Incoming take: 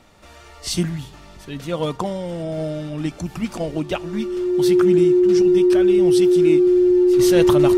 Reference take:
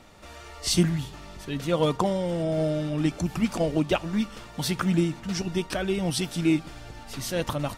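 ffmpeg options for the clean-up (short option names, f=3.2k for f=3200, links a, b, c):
-af "bandreject=f=360:w=30,asetnsamples=n=441:p=0,asendcmd='7.19 volume volume -7.5dB',volume=0dB"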